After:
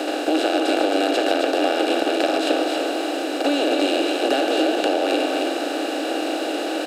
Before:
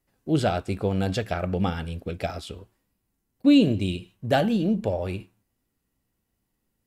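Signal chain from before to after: per-bin compression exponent 0.2; Chebyshev high-pass 310 Hz, order 5; compressor, threshold -19 dBFS, peak gain reduction 7 dB; on a send: echo 0.268 s -4.5 dB; on the sum: gain +2 dB

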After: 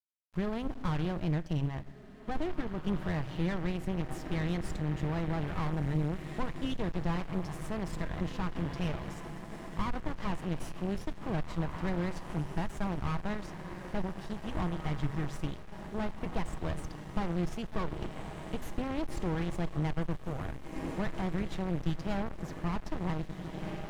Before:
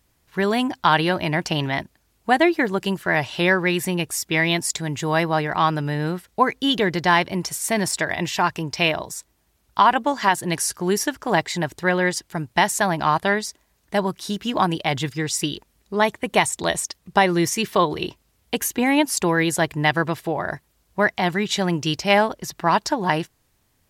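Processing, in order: half-wave gain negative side -7 dB; high shelf 8600 Hz +3.5 dB; small resonant body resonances 1200/3200 Hz, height 7 dB; vibrato 4.9 Hz 87 cents; diffused feedback echo 1.861 s, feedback 61%, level -12 dB; shoebox room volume 3000 m³, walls furnished, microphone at 0.62 m; tube stage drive 29 dB, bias 0.7; bit-crush 8-bit; RIAA curve playback; 1.38–2.87 upward expander 1.5:1, over -38 dBFS; gain -4 dB

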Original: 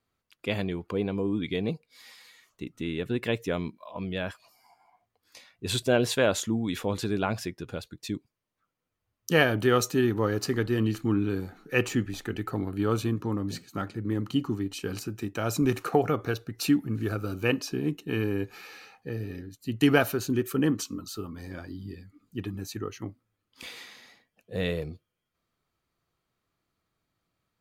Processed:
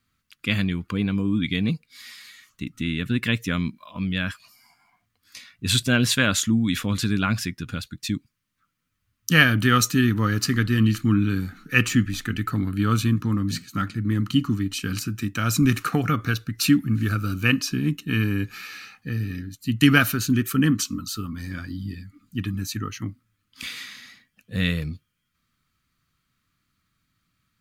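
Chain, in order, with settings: band shelf 570 Hz -15 dB; gain +8.5 dB

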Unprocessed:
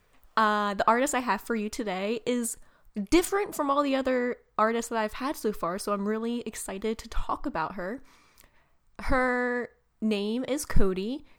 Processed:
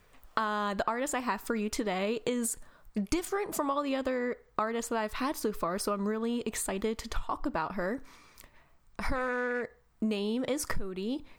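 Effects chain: compressor 10:1, threshold -30 dBFS, peak gain reduction 19 dB; 9.15–9.63 Doppler distortion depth 0.17 ms; gain +3 dB

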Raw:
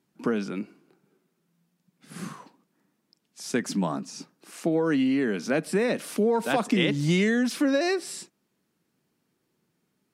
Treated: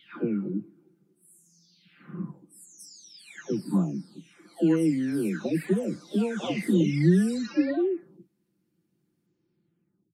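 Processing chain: spectral delay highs early, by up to 0.871 s; resonant low shelf 450 Hz +9 dB, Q 1.5; gain -6 dB

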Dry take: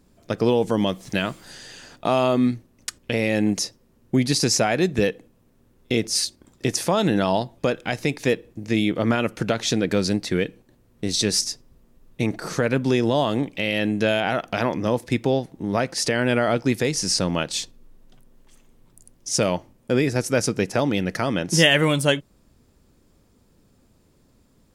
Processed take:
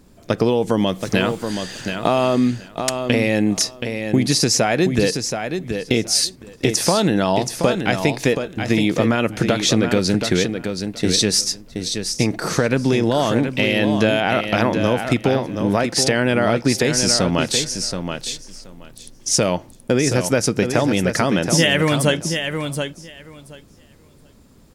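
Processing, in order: compressor 4:1, threshold -22 dBFS, peak gain reduction 9.5 dB; on a send: feedback echo 0.726 s, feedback 15%, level -7 dB; on the sum: gain +8 dB

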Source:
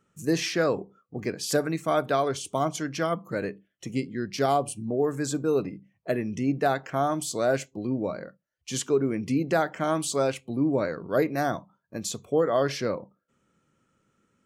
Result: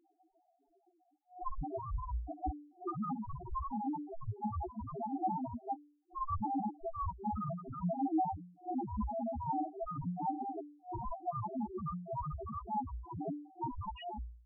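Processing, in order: whole clip reversed; dynamic EQ 6200 Hz, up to +3 dB, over -51 dBFS, Q 4.6; transient shaper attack +8 dB, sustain -4 dB; de-hum 235.9 Hz, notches 9; negative-ratio compressor -30 dBFS, ratio -1; EQ curve 520 Hz 0 dB, 820 Hz +2 dB, 1200 Hz -1 dB, 2600 Hz -6 dB, 6900 Hz -18 dB; ring modulator 530 Hz; loudest bins only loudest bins 1; gain +7.5 dB

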